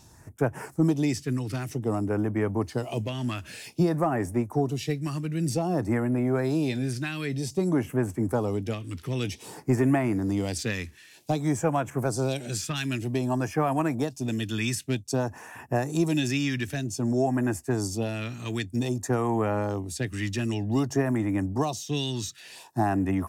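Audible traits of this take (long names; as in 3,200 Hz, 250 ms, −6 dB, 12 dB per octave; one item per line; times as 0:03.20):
phaser sweep stages 2, 0.53 Hz, lowest notch 720–4,000 Hz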